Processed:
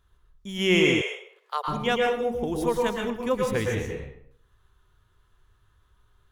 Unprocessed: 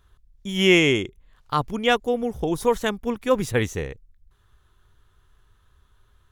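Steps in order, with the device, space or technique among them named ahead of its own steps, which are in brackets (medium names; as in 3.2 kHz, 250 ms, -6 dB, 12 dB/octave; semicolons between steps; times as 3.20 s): bathroom (reverberation RT60 0.65 s, pre-delay 107 ms, DRR -0.5 dB); 1.01–1.68 s: steep high-pass 440 Hz 72 dB/octave; trim -6 dB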